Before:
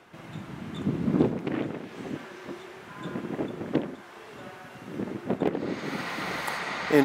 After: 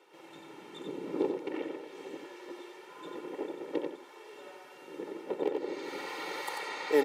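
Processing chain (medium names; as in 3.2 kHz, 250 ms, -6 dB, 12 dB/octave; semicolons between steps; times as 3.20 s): high-pass 240 Hz 24 dB/octave; peaking EQ 1.5 kHz -6.5 dB 0.52 oct; comb 2.2 ms, depth 82%; delay 91 ms -5.5 dB; trim -7.5 dB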